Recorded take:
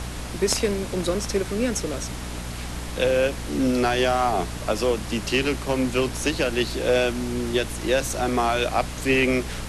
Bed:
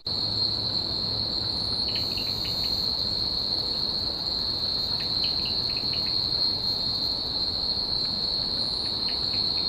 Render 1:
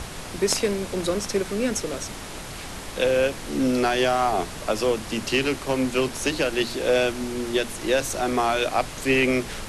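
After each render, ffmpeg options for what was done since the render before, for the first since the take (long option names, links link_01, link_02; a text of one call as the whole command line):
ffmpeg -i in.wav -af "bandreject=frequency=60:width_type=h:width=6,bandreject=frequency=120:width_type=h:width=6,bandreject=frequency=180:width_type=h:width=6,bandreject=frequency=240:width_type=h:width=6,bandreject=frequency=300:width_type=h:width=6" out.wav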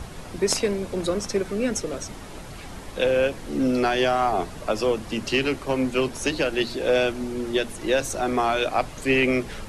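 ffmpeg -i in.wav -af "afftdn=noise_reduction=8:noise_floor=-36" out.wav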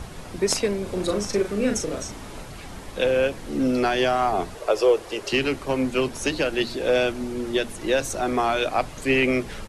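ffmpeg -i in.wav -filter_complex "[0:a]asplit=3[link_01][link_02][link_03];[link_01]afade=type=out:start_time=0.85:duration=0.02[link_04];[link_02]asplit=2[link_05][link_06];[link_06]adelay=39,volume=-5dB[link_07];[link_05][link_07]amix=inputs=2:normalize=0,afade=type=in:start_time=0.85:duration=0.02,afade=type=out:start_time=2.44:duration=0.02[link_08];[link_03]afade=type=in:start_time=2.44:duration=0.02[link_09];[link_04][link_08][link_09]amix=inputs=3:normalize=0,asettb=1/sr,asplit=3[link_10][link_11][link_12];[link_10]atrim=end=4.554[link_13];[link_11]atrim=start=4.55:end=5.33,asetpts=PTS-STARTPTS,afade=type=in:duration=0.004:curve=qsin,afade=type=out:start_time=0.776:duration=0.004:curve=qsin,lowshelf=frequency=310:width_type=q:width=3:gain=-9.5[link_14];[link_12]atrim=start=5.326[link_15];[link_13][link_14]acrossfade=duration=0.004:curve1=hsin:curve2=qsin[link_16];[link_16][link_15]acrossfade=duration=0.004:curve1=qsin:curve2=hsin" out.wav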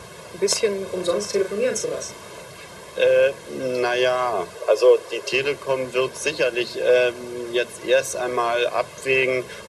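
ffmpeg -i in.wav -af "highpass=180,aecho=1:1:1.9:0.77" out.wav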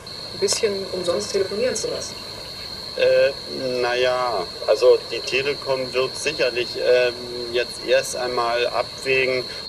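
ffmpeg -i in.wav -i bed.wav -filter_complex "[1:a]volume=-7dB[link_01];[0:a][link_01]amix=inputs=2:normalize=0" out.wav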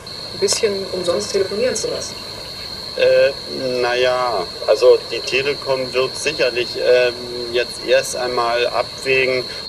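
ffmpeg -i in.wav -af "volume=3.5dB" out.wav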